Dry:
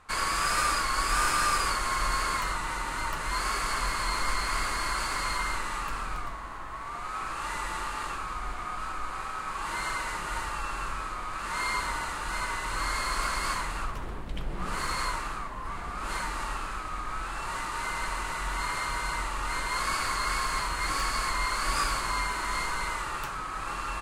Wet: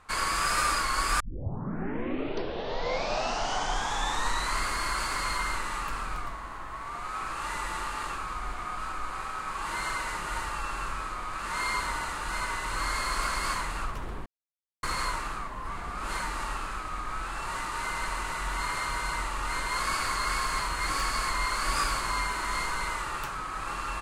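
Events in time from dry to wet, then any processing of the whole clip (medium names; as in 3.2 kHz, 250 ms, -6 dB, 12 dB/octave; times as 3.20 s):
1.20 s: tape start 3.46 s
14.26–14.83 s: mute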